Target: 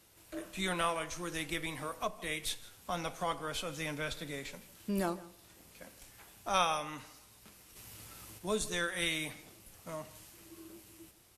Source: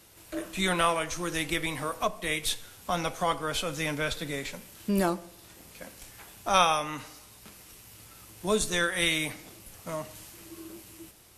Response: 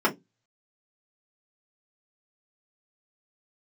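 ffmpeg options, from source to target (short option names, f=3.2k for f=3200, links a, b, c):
-filter_complex "[0:a]asplit=3[a][b][c];[a]afade=t=out:st=7.75:d=0.02[d];[b]acontrast=76,afade=t=in:st=7.75:d=0.02,afade=t=out:st=8.37:d=0.02[e];[c]afade=t=in:st=8.37:d=0.02[f];[d][e][f]amix=inputs=3:normalize=0,asplit=2[g][h];[h]aecho=0:1:163:0.1[i];[g][i]amix=inputs=2:normalize=0,volume=-7.5dB"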